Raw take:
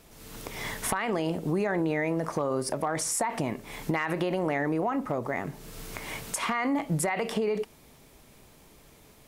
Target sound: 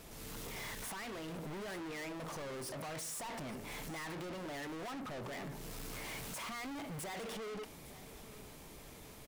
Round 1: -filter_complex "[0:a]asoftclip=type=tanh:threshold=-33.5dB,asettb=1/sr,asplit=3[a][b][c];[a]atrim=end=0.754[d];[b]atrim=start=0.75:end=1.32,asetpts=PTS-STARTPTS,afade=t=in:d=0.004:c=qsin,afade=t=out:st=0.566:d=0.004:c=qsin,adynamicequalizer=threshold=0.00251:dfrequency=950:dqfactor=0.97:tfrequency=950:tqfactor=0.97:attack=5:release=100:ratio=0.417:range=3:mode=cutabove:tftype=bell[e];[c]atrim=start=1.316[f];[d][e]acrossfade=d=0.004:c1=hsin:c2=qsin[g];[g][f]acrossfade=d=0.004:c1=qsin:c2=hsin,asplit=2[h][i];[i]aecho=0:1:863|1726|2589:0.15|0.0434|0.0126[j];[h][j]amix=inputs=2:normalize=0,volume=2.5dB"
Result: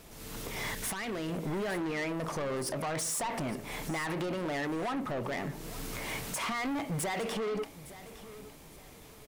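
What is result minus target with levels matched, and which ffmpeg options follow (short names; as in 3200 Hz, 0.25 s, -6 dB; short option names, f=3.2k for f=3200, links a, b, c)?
soft clip: distortion -5 dB
-filter_complex "[0:a]asoftclip=type=tanh:threshold=-45dB,asettb=1/sr,asplit=3[a][b][c];[a]atrim=end=0.754[d];[b]atrim=start=0.75:end=1.32,asetpts=PTS-STARTPTS,afade=t=in:d=0.004:c=qsin,afade=t=out:st=0.566:d=0.004:c=qsin,adynamicequalizer=threshold=0.00251:dfrequency=950:dqfactor=0.97:tfrequency=950:tqfactor=0.97:attack=5:release=100:ratio=0.417:range=3:mode=cutabove:tftype=bell[e];[c]atrim=start=1.316[f];[d][e]acrossfade=d=0.004:c1=hsin:c2=qsin[g];[g][f]acrossfade=d=0.004:c1=qsin:c2=hsin,asplit=2[h][i];[i]aecho=0:1:863|1726|2589:0.15|0.0434|0.0126[j];[h][j]amix=inputs=2:normalize=0,volume=2.5dB"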